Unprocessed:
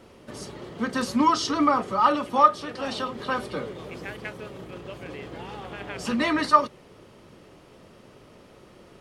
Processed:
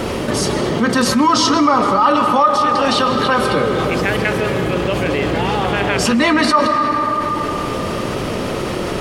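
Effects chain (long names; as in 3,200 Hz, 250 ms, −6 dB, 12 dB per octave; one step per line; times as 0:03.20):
convolution reverb RT60 2.4 s, pre-delay 85 ms, DRR 9.5 dB
envelope flattener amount 70%
level +1.5 dB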